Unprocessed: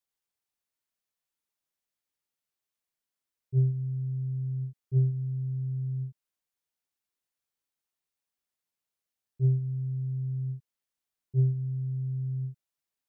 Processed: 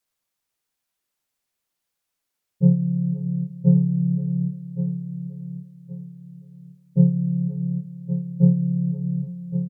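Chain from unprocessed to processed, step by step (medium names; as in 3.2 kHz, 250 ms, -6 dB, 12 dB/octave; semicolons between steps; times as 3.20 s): harmony voices -4 st -4 dB; echo from a far wall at 120 m, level -14 dB; speed mistake 33 rpm record played at 45 rpm; feedback delay 1120 ms, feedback 30%, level -10 dB; trim +7.5 dB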